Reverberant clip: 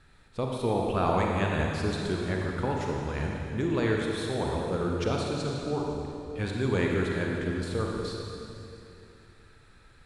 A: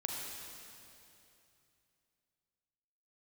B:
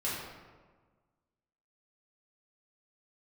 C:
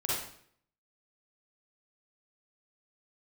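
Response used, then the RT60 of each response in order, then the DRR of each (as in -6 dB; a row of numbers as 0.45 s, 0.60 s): A; 2.8 s, 1.4 s, 0.60 s; -1.0 dB, -9.0 dB, -7.5 dB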